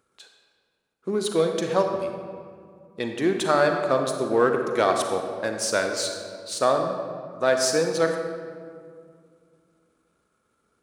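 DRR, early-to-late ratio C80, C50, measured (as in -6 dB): 4.0 dB, 6.0 dB, 4.5 dB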